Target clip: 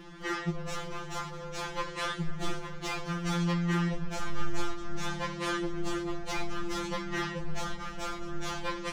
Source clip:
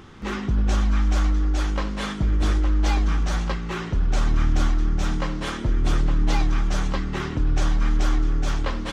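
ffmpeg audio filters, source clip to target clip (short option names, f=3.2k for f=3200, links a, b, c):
-af "volume=19dB,asoftclip=hard,volume=-19dB,asubboost=boost=3:cutoff=57,afftfilt=real='re*2.83*eq(mod(b,8),0)':imag='im*2.83*eq(mod(b,8),0)':win_size=2048:overlap=0.75"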